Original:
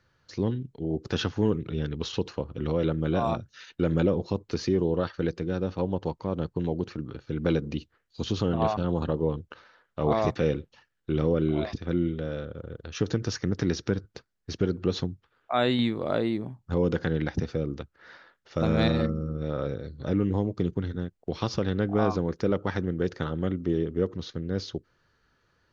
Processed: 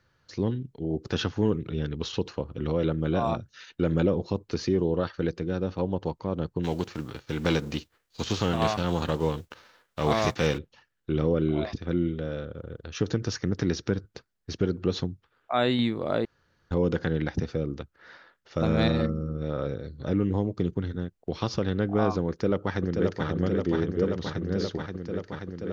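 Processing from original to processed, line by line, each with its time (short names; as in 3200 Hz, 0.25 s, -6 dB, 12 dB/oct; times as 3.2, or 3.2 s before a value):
6.63–10.57 spectral whitening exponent 0.6
16.25–16.71 room tone
22.29–23.27 echo throw 0.53 s, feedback 85%, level -4 dB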